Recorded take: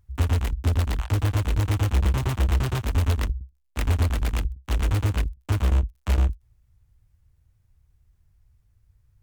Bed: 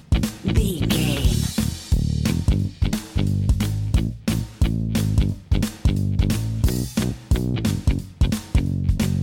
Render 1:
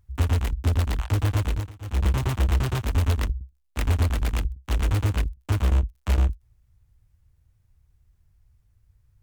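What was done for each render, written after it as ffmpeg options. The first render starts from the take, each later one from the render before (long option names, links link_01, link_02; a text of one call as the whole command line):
ffmpeg -i in.wav -filter_complex "[0:a]asplit=3[link_01][link_02][link_03];[link_01]atrim=end=1.72,asetpts=PTS-STARTPTS,afade=type=out:start_time=1.47:duration=0.25:silence=0.0794328[link_04];[link_02]atrim=start=1.72:end=1.8,asetpts=PTS-STARTPTS,volume=-22dB[link_05];[link_03]atrim=start=1.8,asetpts=PTS-STARTPTS,afade=type=in:duration=0.25:silence=0.0794328[link_06];[link_04][link_05][link_06]concat=n=3:v=0:a=1" out.wav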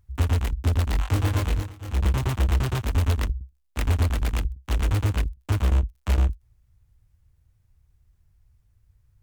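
ffmpeg -i in.wav -filter_complex "[0:a]asettb=1/sr,asplit=3[link_01][link_02][link_03];[link_01]atrim=end=0.914[link_04];[link_02]atrim=start=0.91:end=1.93,asetpts=PTS-STARTPTS,afade=type=in:duration=0.004:curve=qsin,afade=type=out:start_time=1.016:duration=0.004:curve=qsin,asplit=2[link_05][link_06];[link_06]adelay=23,volume=-2.5dB[link_07];[link_05][link_07]amix=inputs=2:normalize=0,atrim=end_sample=44982[link_08];[link_03]atrim=start=1.926[link_09];[link_04][link_08]acrossfade=duration=0.004:curve1=hsin:curve2=qsin[link_10];[link_10][link_09]acrossfade=duration=0.004:curve1=qsin:curve2=hsin" out.wav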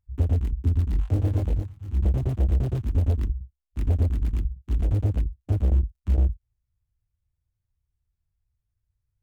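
ffmpeg -i in.wav -af "afwtdn=0.0447" out.wav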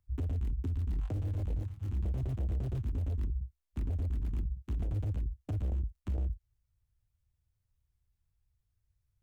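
ffmpeg -i in.wav -filter_complex "[0:a]acrossover=split=100|1300[link_01][link_02][link_03];[link_01]acompressor=threshold=-26dB:ratio=4[link_04];[link_02]acompressor=threshold=-35dB:ratio=4[link_05];[link_03]acompressor=threshold=-57dB:ratio=4[link_06];[link_04][link_05][link_06]amix=inputs=3:normalize=0,alimiter=level_in=3.5dB:limit=-24dB:level=0:latency=1:release=37,volume=-3.5dB" out.wav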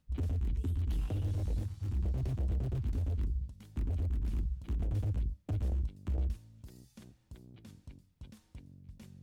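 ffmpeg -i in.wav -i bed.wav -filter_complex "[1:a]volume=-31.5dB[link_01];[0:a][link_01]amix=inputs=2:normalize=0" out.wav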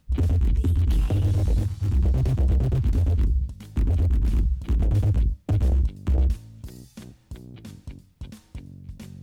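ffmpeg -i in.wav -af "volume=12dB" out.wav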